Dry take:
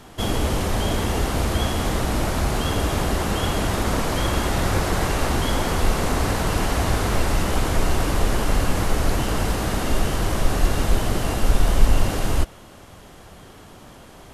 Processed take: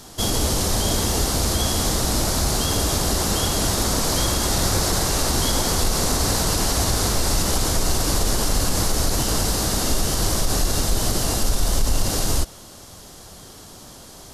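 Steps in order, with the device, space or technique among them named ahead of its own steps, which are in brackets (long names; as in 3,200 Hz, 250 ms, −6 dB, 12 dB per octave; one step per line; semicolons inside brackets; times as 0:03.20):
over-bright horn tweeter (high shelf with overshoot 3,500 Hz +9.5 dB, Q 1.5; brickwall limiter −10 dBFS, peak gain reduction 8.5 dB)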